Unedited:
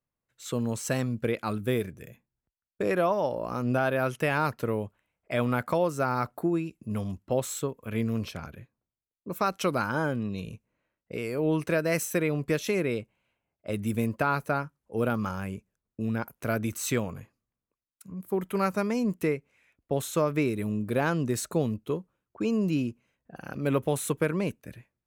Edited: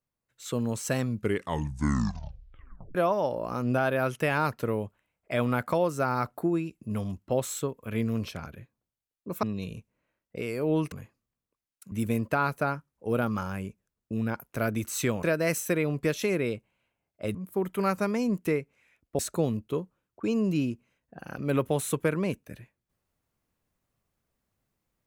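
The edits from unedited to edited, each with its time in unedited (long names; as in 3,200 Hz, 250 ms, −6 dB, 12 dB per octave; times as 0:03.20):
0:01.08: tape stop 1.87 s
0:09.43–0:10.19: remove
0:11.68–0:13.80: swap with 0:17.11–0:18.11
0:19.95–0:21.36: remove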